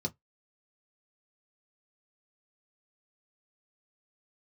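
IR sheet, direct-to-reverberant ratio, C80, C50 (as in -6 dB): 1.0 dB, 42.0 dB, 29.0 dB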